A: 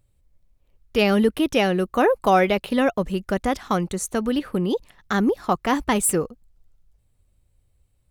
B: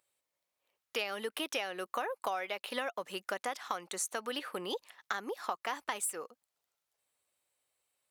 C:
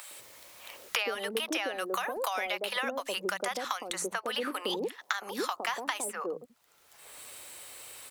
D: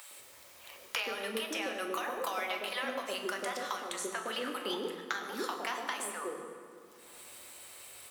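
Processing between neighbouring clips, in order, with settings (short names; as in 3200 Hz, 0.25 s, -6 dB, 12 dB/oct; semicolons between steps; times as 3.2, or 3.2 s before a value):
HPF 760 Hz 12 dB/oct; compressor 16:1, threshold -30 dBFS, peak gain reduction 15.5 dB; gain -1.5 dB
three bands offset in time highs, mids, lows 0.11/0.19 s, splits 180/660 Hz; three-band squash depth 100%; gain +5 dB
reverb RT60 2.3 s, pre-delay 6 ms, DRR 2.5 dB; gain -5 dB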